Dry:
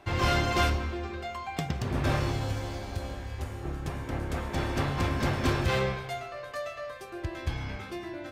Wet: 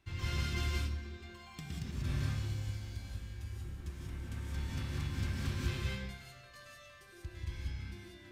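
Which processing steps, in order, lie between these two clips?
guitar amp tone stack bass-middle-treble 6-0-2
reverb whose tail is shaped and stops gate 210 ms rising, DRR −2.5 dB
level +3 dB

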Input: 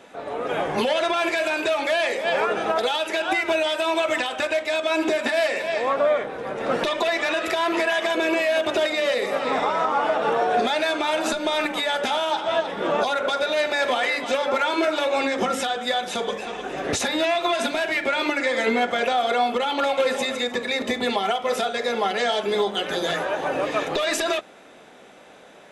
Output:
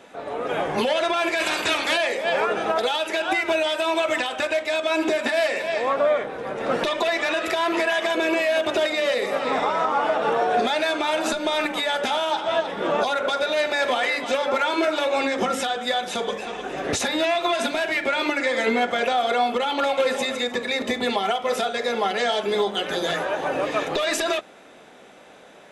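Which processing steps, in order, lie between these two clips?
0:01.39–0:01.96: ceiling on every frequency bin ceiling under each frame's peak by 19 dB

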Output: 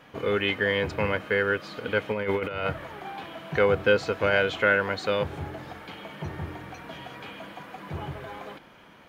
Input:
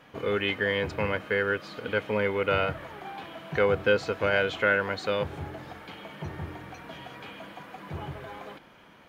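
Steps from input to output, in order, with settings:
0:02.11–0:02.67: compressor whose output falls as the input rises −29 dBFS, ratio −0.5
level +2 dB

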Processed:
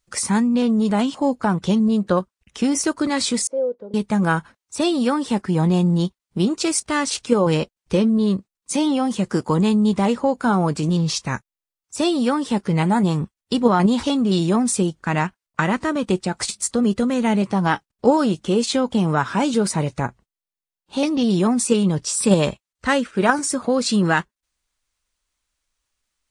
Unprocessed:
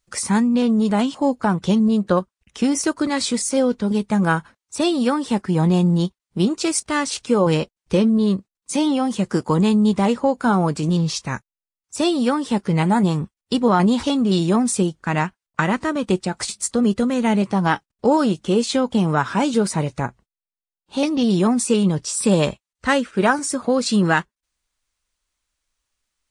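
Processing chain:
in parallel at −1.5 dB: output level in coarse steps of 14 dB
0:03.47–0:03.94: on the sum: resonant band-pass 510 Hz, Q 5.4
level −2.5 dB

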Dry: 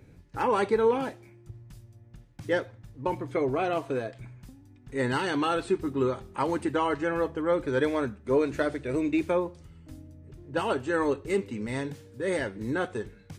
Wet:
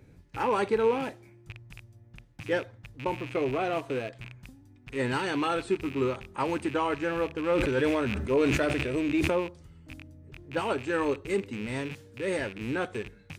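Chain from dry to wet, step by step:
loose part that buzzes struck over −42 dBFS, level −29 dBFS
0:07.37–0:09.30: level that may fall only so fast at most 22 dB per second
level −1.5 dB

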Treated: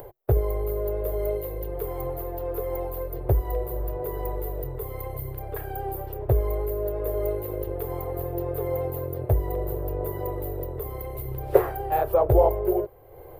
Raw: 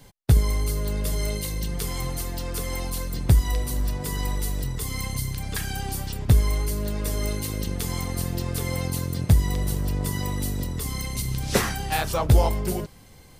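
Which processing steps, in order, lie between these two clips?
drawn EQ curve 130 Hz 0 dB, 220 Hz −24 dB, 360 Hz +13 dB, 640 Hz +13 dB, 940 Hz +4 dB, 2,400 Hz −10 dB, 6,200 Hz −29 dB, 10,000 Hz −14 dB, 15,000 Hz +8 dB
upward compression, threshold −29 dBFS
level −5 dB

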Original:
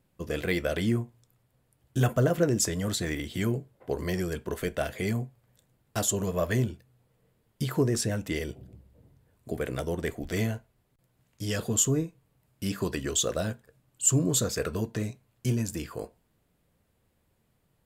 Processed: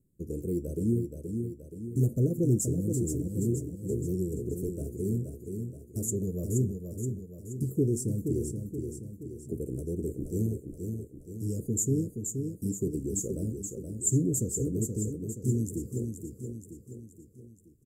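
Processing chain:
elliptic band-stop filter 390–7,500 Hz, stop band 40 dB
high-shelf EQ 5,500 Hz −4 dB
repeating echo 475 ms, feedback 51%, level −6 dB

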